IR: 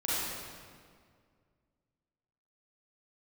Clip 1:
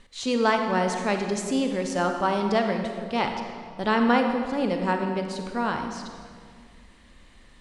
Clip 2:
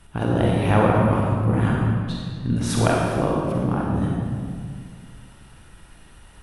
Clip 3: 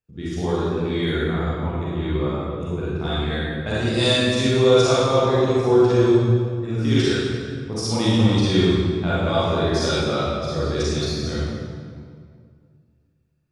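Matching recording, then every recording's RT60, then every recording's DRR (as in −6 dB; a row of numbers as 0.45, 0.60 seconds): 3; 2.0, 2.0, 2.0 seconds; 4.5, −3.0, −10.0 decibels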